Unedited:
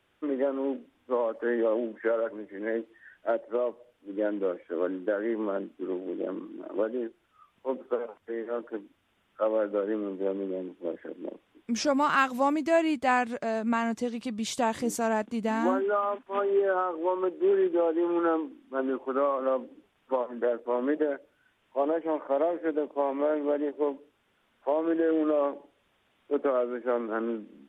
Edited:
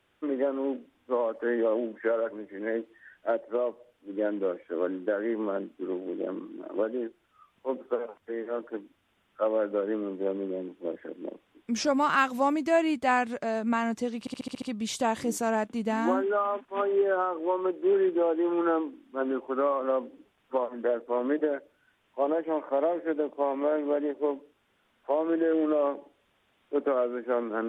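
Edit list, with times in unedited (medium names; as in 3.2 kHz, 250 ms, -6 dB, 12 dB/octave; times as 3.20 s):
14.20 s: stutter 0.07 s, 7 plays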